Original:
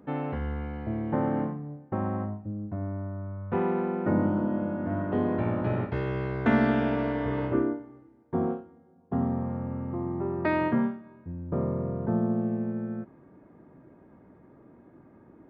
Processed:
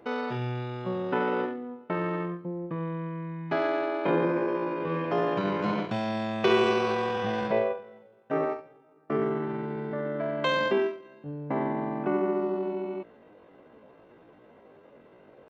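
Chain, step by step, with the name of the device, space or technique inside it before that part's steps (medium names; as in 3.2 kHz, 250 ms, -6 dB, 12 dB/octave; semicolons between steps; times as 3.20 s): chipmunk voice (pitch shift +9 st)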